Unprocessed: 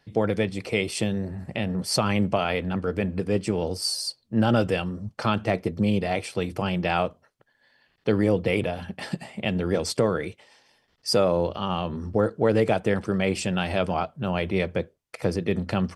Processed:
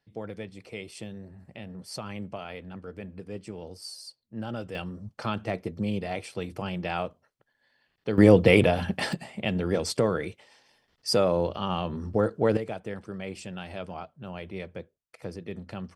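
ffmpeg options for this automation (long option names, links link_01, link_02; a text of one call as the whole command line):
ffmpeg -i in.wav -af "asetnsamples=nb_out_samples=441:pad=0,asendcmd='4.75 volume volume -6.5dB;8.18 volume volume 6dB;9.13 volume volume -2dB;12.57 volume volume -12.5dB',volume=-14dB" out.wav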